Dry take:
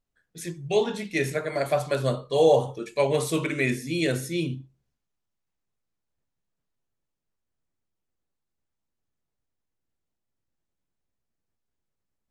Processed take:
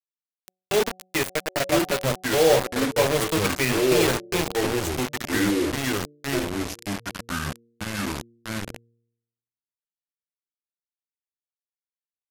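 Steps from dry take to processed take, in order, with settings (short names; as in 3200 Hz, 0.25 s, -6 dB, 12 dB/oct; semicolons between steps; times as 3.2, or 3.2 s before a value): bit-crush 4-bit; de-hum 185.3 Hz, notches 4; echoes that change speed 0.797 s, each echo -4 st, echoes 2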